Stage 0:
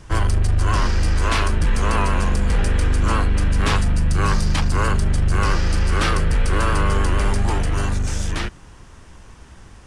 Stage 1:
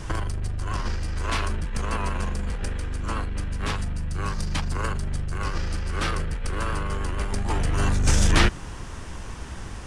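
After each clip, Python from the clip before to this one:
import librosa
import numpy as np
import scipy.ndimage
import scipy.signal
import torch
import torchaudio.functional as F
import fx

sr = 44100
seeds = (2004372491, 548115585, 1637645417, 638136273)

y = fx.over_compress(x, sr, threshold_db=-22.0, ratio=-0.5)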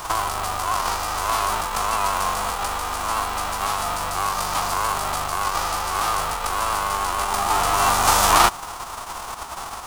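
y = fx.envelope_flatten(x, sr, power=0.3)
y = fx.band_shelf(y, sr, hz=950.0, db=14.0, octaves=1.2)
y = y * librosa.db_to_amplitude(-4.0)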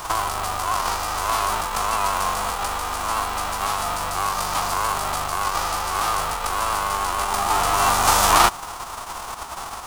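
y = x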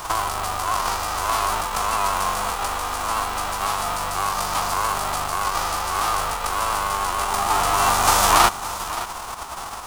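y = x + 10.0 ** (-14.0 / 20.0) * np.pad(x, (int(570 * sr / 1000.0), 0))[:len(x)]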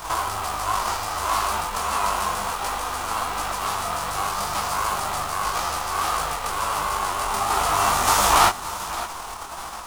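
y = fx.detune_double(x, sr, cents=50)
y = y * librosa.db_to_amplitude(2.0)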